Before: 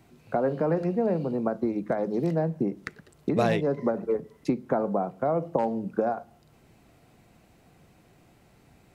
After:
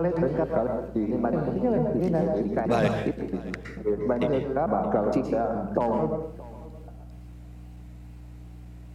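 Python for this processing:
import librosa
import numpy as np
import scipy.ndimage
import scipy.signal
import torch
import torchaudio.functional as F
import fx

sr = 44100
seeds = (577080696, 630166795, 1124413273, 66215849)

p1 = fx.block_reorder(x, sr, ms=222.0, group=4)
p2 = fx.wow_flutter(p1, sr, seeds[0], rate_hz=2.1, depth_cents=110.0)
p3 = fx.add_hum(p2, sr, base_hz=60, snr_db=15)
p4 = p3 + fx.echo_single(p3, sr, ms=624, db=-20.0, dry=0)
y = fx.rev_plate(p4, sr, seeds[1], rt60_s=0.52, hf_ratio=0.85, predelay_ms=105, drr_db=3.5)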